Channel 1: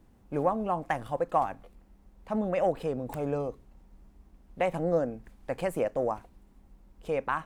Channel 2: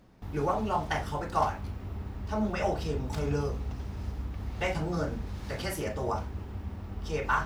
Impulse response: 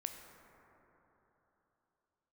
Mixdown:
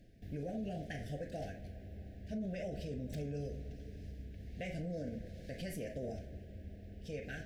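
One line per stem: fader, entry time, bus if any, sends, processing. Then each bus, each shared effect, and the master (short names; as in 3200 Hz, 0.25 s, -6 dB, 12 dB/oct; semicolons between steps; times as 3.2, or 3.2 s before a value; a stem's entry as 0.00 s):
-13.5 dB, 0.00 s, send -6.5 dB, resonant low shelf 260 Hz +8 dB, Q 1.5
-5.0 dB, 0.00 s, send -11.5 dB, auto duck -10 dB, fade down 0.55 s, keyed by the first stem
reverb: on, RT60 3.6 s, pre-delay 13 ms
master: Chebyshev band-stop 700–1600 Hz, order 4; limiter -33 dBFS, peak gain reduction 9.5 dB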